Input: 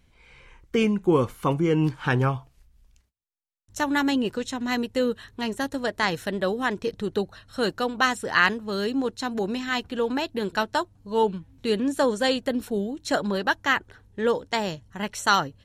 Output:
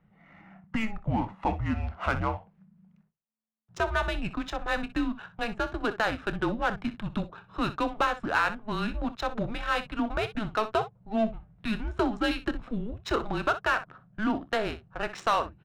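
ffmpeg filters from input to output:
-filter_complex "[0:a]acompressor=threshold=-24dB:ratio=2.5,afreqshift=-220,adynamicsmooth=sensitivity=7.5:basefreq=1.3k,asplit=2[a][b];[b]aecho=0:1:27|62:0.158|0.178[c];[a][c]amix=inputs=2:normalize=0,asplit=2[d][e];[e]highpass=f=720:p=1,volume=11dB,asoftclip=type=tanh:threshold=-12.5dB[f];[d][f]amix=inputs=2:normalize=0,lowpass=f=1.7k:p=1,volume=-6dB"

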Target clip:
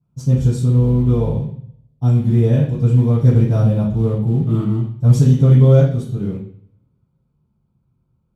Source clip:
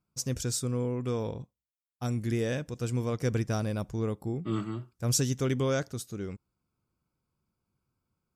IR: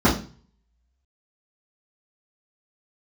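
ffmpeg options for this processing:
-filter_complex "[0:a]acrusher=bits=5:mode=log:mix=0:aa=0.000001,asettb=1/sr,asplit=3[a][b][c];[a]atrim=end=0.764[d];[b]atrim=start=0.76:end=1.33,asetpts=PTS-STARTPTS,afade=t=in:d=0.004:c=qsin,afade=t=out:st=0.566:d=0.004:c=qsin,aeval=exprs='val(0)+0.00562*(sin(2*PI*50*n/s)+sin(2*PI*2*50*n/s)/2+sin(2*PI*3*50*n/s)/3+sin(2*PI*4*50*n/s)/4+sin(2*PI*5*50*n/s)/5)':c=same[e];[c]atrim=start=1.326[f];[d][e]acrossfade=d=0.004:c1=hsin:c2=qsin[g];[g][f]acrossfade=d=0.004:c1=qsin:c2=hsin[h];[1:a]atrim=start_sample=2205,asetrate=28224,aresample=44100[i];[h][i]afir=irnorm=-1:irlink=0,volume=-16.5dB"

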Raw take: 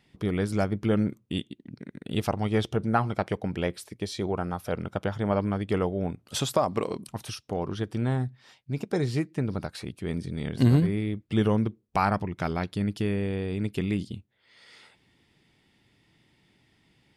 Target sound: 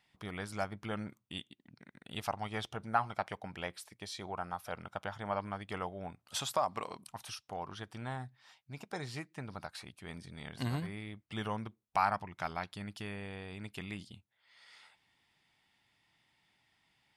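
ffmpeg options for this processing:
-af "lowshelf=f=580:t=q:w=1.5:g=-9.5,volume=-6dB"

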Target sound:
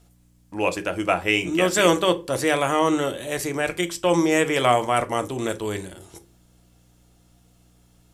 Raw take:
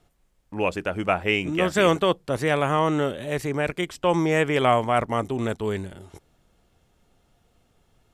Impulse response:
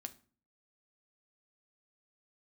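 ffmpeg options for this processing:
-filter_complex "[0:a]bass=f=250:g=-5,treble=f=4k:g=10,aeval=exprs='val(0)+0.00158*(sin(2*PI*60*n/s)+sin(2*PI*2*60*n/s)/2+sin(2*PI*3*60*n/s)/3+sin(2*PI*4*60*n/s)/4+sin(2*PI*5*60*n/s)/5)':c=same[a];[1:a]atrim=start_sample=2205,asetrate=61740,aresample=44100[b];[a][b]afir=irnorm=-1:irlink=0,volume=8.5dB"

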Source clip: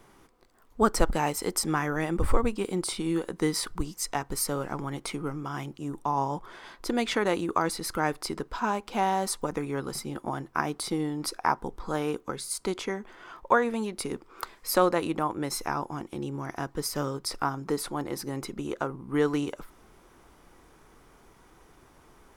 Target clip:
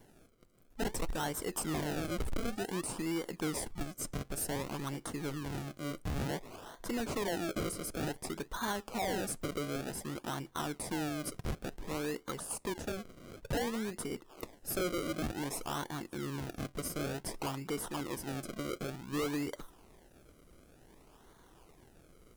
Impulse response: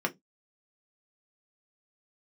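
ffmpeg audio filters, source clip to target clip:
-filter_complex "[0:a]asettb=1/sr,asplit=3[a][b][c];[a]atrim=end=6.284[d];[b]atrim=start=6.28:end=6.85,asetpts=PTS-STARTPTS,afade=t=in:d=0.004:c=qsin,afade=t=out:st=0.566:d=0.004:c=qsin,equalizer=f=680:w=3.8:g=9[e];[c]atrim=start=6.846[f];[d][e]acrossfade=d=0.004:c1=hsin:c2=qsin[g];[g][f]acrossfade=d=0.004:c1=qsin:c2=hsin,acrossover=split=5900[h][i];[h]acrusher=samples=34:mix=1:aa=0.000001:lfo=1:lforange=34:lforate=0.55[j];[j][i]amix=inputs=2:normalize=0,asoftclip=type=tanh:threshold=-26.5dB,volume=-3.5dB"

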